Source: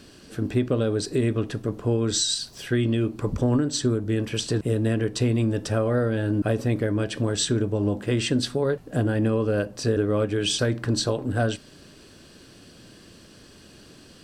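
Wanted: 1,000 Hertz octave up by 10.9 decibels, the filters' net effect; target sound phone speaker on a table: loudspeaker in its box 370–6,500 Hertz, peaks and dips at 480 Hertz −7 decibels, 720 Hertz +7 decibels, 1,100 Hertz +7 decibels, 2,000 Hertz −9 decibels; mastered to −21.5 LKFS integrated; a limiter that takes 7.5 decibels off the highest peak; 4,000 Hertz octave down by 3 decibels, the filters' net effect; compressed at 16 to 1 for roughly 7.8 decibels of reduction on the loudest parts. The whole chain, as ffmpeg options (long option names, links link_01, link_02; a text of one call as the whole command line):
ffmpeg -i in.wav -af "equalizer=frequency=1000:width_type=o:gain=8,equalizer=frequency=4000:width_type=o:gain=-3.5,acompressor=threshold=-25dB:ratio=16,alimiter=limit=-21.5dB:level=0:latency=1,highpass=frequency=370:width=0.5412,highpass=frequency=370:width=1.3066,equalizer=frequency=480:width_type=q:width=4:gain=-7,equalizer=frequency=720:width_type=q:width=4:gain=7,equalizer=frequency=1100:width_type=q:width=4:gain=7,equalizer=frequency=2000:width_type=q:width=4:gain=-9,lowpass=frequency=6500:width=0.5412,lowpass=frequency=6500:width=1.3066,volume=14.5dB" out.wav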